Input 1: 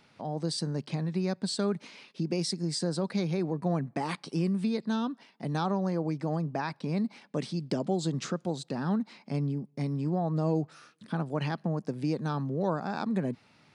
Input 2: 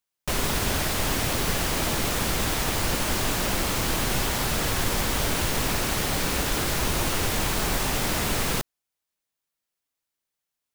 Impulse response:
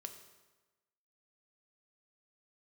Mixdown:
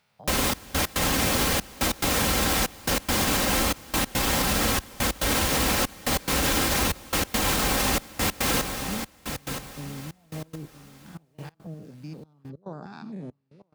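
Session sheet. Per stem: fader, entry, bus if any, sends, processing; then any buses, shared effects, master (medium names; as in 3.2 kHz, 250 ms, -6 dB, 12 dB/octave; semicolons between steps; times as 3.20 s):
-7.5 dB, 0.00 s, send -8 dB, echo send -12.5 dB, spectrogram pixelated in time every 100 ms; step-sequenced notch 4.2 Hz 300–2400 Hz
+2.0 dB, 0.00 s, send -5.5 dB, echo send -8.5 dB, comb 3.8 ms, depth 42%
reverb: on, RT60 1.2 s, pre-delay 3 ms
echo: feedback delay 971 ms, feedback 29%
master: trance gate "xxxxx..x.x" 141 bpm -24 dB; high-pass 47 Hz; peak limiter -13.5 dBFS, peak gain reduction 6 dB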